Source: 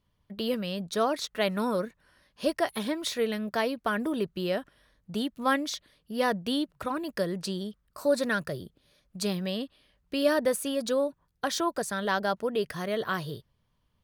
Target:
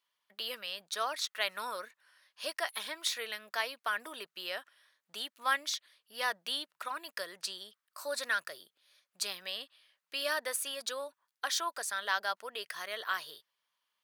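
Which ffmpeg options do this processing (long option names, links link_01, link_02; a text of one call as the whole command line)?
ffmpeg -i in.wav -af "highpass=1200" out.wav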